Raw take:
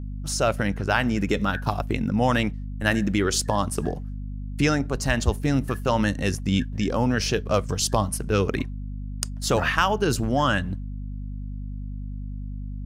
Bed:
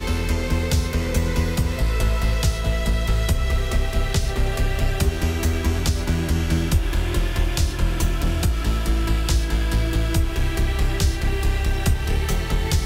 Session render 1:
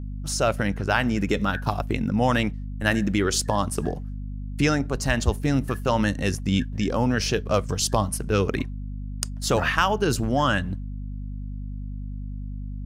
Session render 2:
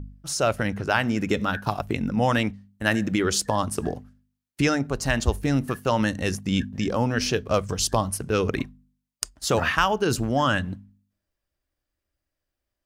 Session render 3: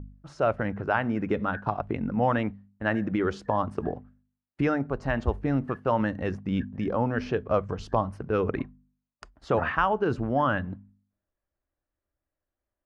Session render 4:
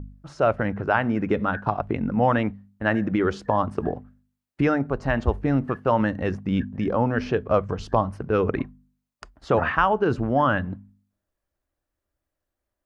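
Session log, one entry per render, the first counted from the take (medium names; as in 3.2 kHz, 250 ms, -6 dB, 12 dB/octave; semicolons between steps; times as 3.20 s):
no audible change
de-hum 50 Hz, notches 5
low-pass 1.4 kHz 12 dB/octave; bass shelf 360 Hz -4.5 dB
trim +4 dB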